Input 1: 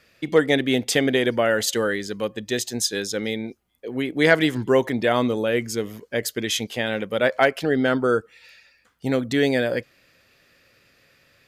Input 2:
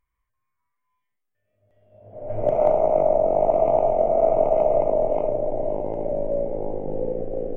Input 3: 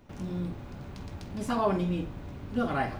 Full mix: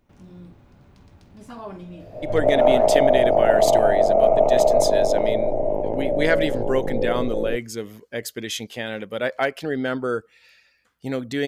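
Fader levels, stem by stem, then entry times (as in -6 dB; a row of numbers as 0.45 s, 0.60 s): -4.5 dB, +2.5 dB, -9.5 dB; 2.00 s, 0.00 s, 0.00 s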